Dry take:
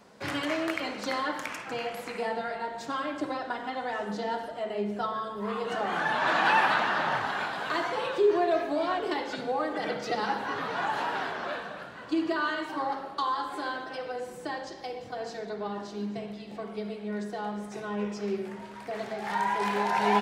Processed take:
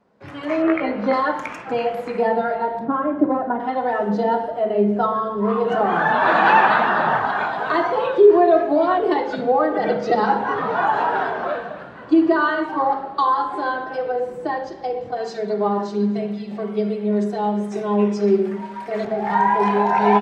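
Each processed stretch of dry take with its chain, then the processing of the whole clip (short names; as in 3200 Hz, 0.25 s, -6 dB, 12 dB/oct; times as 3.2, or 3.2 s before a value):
0.62–1.13 LPF 2700 Hz + doubler 19 ms -4 dB
2.79–3.6 LPF 1500 Hz + bell 210 Hz +6.5 dB 0.88 oct
15.16–19.05 tilt +2 dB/oct + comb 5.1 ms, depth 70%
whole clip: spectral noise reduction 6 dB; LPF 1100 Hz 6 dB/oct; AGC gain up to 14 dB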